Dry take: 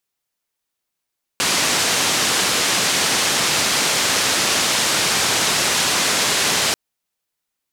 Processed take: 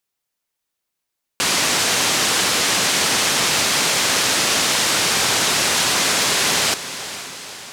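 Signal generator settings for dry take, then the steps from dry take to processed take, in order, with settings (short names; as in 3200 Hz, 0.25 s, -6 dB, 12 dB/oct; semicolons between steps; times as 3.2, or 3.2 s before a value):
noise band 120–7000 Hz, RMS -18.5 dBFS 5.34 s
hard clip -9.5 dBFS; on a send: diffused feedback echo 0.48 s, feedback 58%, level -13 dB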